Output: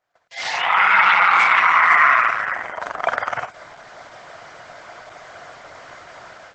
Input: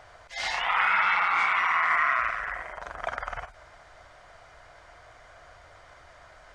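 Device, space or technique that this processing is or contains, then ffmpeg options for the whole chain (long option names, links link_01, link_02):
video call: -filter_complex "[0:a]asettb=1/sr,asplit=3[link_01][link_02][link_03];[link_01]atrim=end=2.714[link_04];[link_02]atrim=start=2.71:end=3.13,asetpts=PTS-STARTPTS,afade=type=in:duration=0.004:curve=qsin,afade=type=out:start_time=0.416:duration=0.004:curve=qsin,adynamicequalizer=threshold=0.002:dfrequency=130:dqfactor=0.73:tfrequency=130:tqfactor=0.73:attack=5:release=100:ratio=0.375:range=3:mode=cutabove:tftype=bell[link_05];[link_03]atrim=start=3.126[link_06];[link_04][link_05]acrossfade=duration=0.004:curve1=hsin:curve2=qsin[link_07];[link_07][link_06]acrossfade=duration=0.004:curve1=qsin:curve2=hsin,highpass=frequency=120:width=0.5412,highpass=frequency=120:width=1.3066,dynaudnorm=framelen=340:gausssize=3:maxgain=12dB,agate=range=-26dB:threshold=-48dB:ratio=16:detection=peak,volume=1.5dB" -ar 48000 -c:a libopus -b:a 12k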